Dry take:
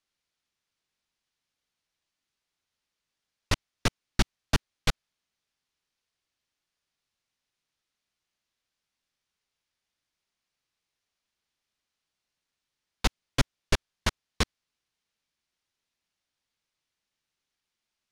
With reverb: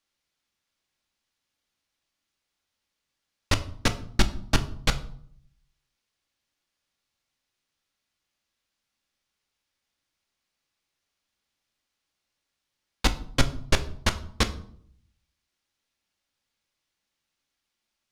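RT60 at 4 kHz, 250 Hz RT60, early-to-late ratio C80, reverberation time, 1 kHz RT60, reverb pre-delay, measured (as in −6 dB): 0.40 s, 0.80 s, 18.5 dB, 0.60 s, 0.60 s, 4 ms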